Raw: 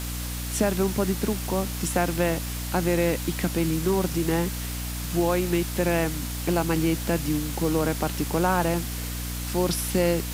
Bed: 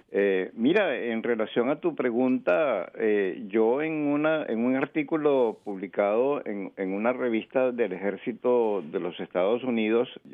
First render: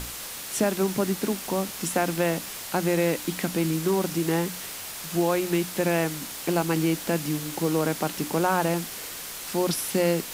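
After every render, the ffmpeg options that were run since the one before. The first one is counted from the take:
-af "bandreject=f=60:t=h:w=6,bandreject=f=120:t=h:w=6,bandreject=f=180:t=h:w=6,bandreject=f=240:t=h:w=6,bandreject=f=300:t=h:w=6"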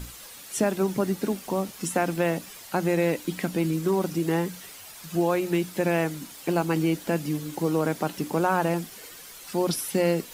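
-af "afftdn=nr=10:nf=-37"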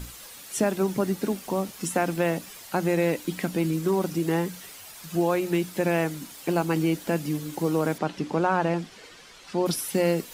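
-filter_complex "[0:a]asettb=1/sr,asplit=3[s0][s1][s2];[s0]atrim=end=7.984[s3];[s1]atrim=start=7.98:end=9.66,asetpts=PTS-STARTPTS,afade=t=in:d=0.004:c=qsin,afade=t=out:st=1.676:d=0.004:c=qsin,lowpass=5000[s4];[s2]atrim=start=9.656[s5];[s3][s4]acrossfade=d=0.004:c1=hsin:c2=qsin[s6];[s6][s5]acrossfade=d=0.004:c1=qsin:c2=hsin"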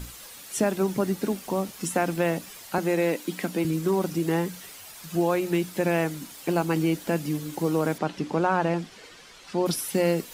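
-filter_complex "[0:a]asettb=1/sr,asplit=3[s0][s1][s2];[s0]atrim=end=2.784[s3];[s1]atrim=start=2.78:end=3.65,asetpts=PTS-STARTPTS,afade=t=in:d=0.004:c=qsin,afade=t=out:st=0.866:d=0.004:c=qsin,highpass=f=180:w=0.5412,highpass=f=180:w=1.3066[s4];[s2]atrim=start=3.646[s5];[s3][s4]acrossfade=d=0.004:c1=hsin:c2=qsin[s6];[s6][s5]acrossfade=d=0.004:c1=qsin:c2=hsin"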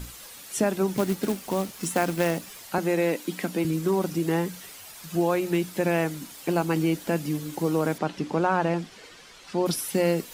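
-filter_complex "[0:a]asettb=1/sr,asplit=3[s0][s1][s2];[s0]atrim=end=0.964[s3];[s1]atrim=start=0.96:end=2.61,asetpts=PTS-STARTPTS,afade=t=in:d=0.004:c=qsin,afade=t=out:st=1.646:d=0.004:c=qsin,acrusher=bits=3:mode=log:mix=0:aa=0.000001[s4];[s2]atrim=start=2.606[s5];[s3][s4]acrossfade=d=0.004:c1=hsin:c2=qsin[s6];[s6][s5]acrossfade=d=0.004:c1=qsin:c2=hsin"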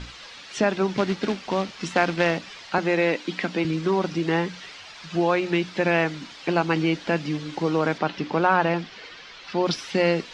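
-af "lowpass=f=5300:w=0.5412,lowpass=f=5300:w=1.3066,equalizer=f=2400:w=0.36:g=7.5"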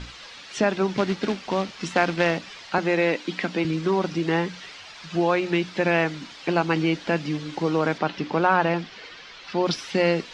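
-af anull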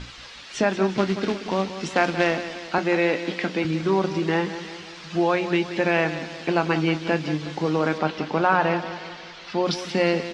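-filter_complex "[0:a]asplit=2[s0][s1];[s1]adelay=26,volume=0.224[s2];[s0][s2]amix=inputs=2:normalize=0,aecho=1:1:180|360|540|720|900:0.251|0.131|0.0679|0.0353|0.0184"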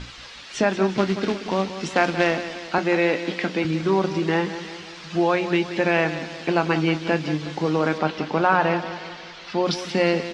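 -af "volume=1.12"

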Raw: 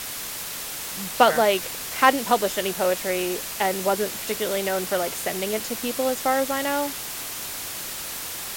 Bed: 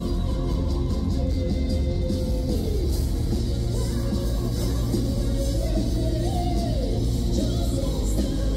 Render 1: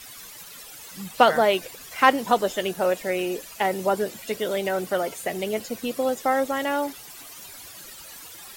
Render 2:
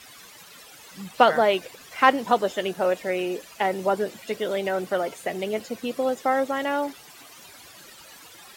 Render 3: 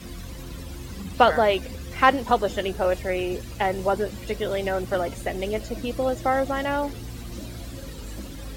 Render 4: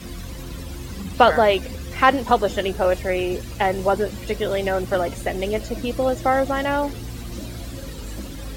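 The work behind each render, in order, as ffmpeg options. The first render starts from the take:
-af "afftdn=nr=14:nf=-33"
-af "highpass=f=110:p=1,highshelf=f=6900:g=-10.5"
-filter_complex "[1:a]volume=0.224[s0];[0:a][s0]amix=inputs=2:normalize=0"
-af "volume=1.5,alimiter=limit=0.794:level=0:latency=1"

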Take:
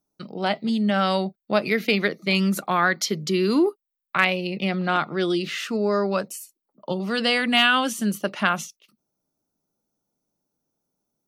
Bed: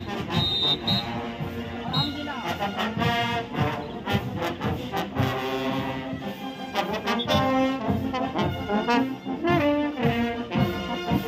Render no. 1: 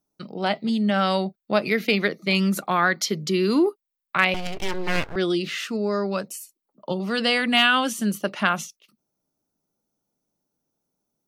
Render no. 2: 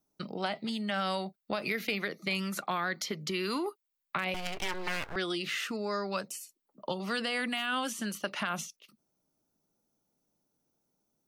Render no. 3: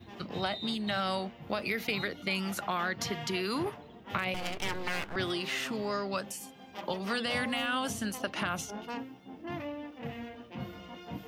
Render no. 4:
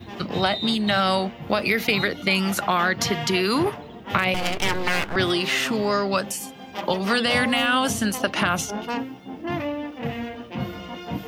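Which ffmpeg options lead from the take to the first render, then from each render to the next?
-filter_complex "[0:a]asettb=1/sr,asplit=3[s0][s1][s2];[s0]atrim=end=4.344[s3];[s1]atrim=start=4.34:end=5.16,asetpts=PTS-STARTPTS,afade=t=in:d=0.004:c=qsin,afade=t=out:st=0.816:d=0.004:c=qsin,aeval=exprs='abs(val(0))':c=same[s4];[s2]atrim=start=5.156[s5];[s3][s4]acrossfade=d=0.004:c1=hsin:c2=qsin[s6];[s6][s5]acrossfade=d=0.004:c1=qsin:c2=hsin,asettb=1/sr,asplit=3[s7][s8][s9];[s7]atrim=end=5.664[s10];[s8]atrim=start=5.66:end=6.29,asetpts=PTS-STARTPTS,afade=t=in:d=0.004:c=qsin,afade=t=out:st=0.626:d=0.004:c=qsin,equalizer=f=850:w=0.41:g=-3.5[s11];[s9]atrim=start=6.286[s12];[s10][s11]acrossfade=d=0.004:c1=hsin:c2=qsin[s13];[s13][s12]acrossfade=d=0.004:c1=qsin:c2=hsin"
-filter_complex "[0:a]alimiter=limit=0.211:level=0:latency=1:release=39,acrossover=split=770|2700|7200[s0][s1][s2][s3];[s0]acompressor=threshold=0.0141:ratio=4[s4];[s1]acompressor=threshold=0.02:ratio=4[s5];[s2]acompressor=threshold=0.00794:ratio=4[s6];[s3]acompressor=threshold=0.00501:ratio=4[s7];[s4][s5][s6][s7]amix=inputs=4:normalize=0"
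-filter_complex "[1:a]volume=0.141[s0];[0:a][s0]amix=inputs=2:normalize=0"
-af "volume=3.55"

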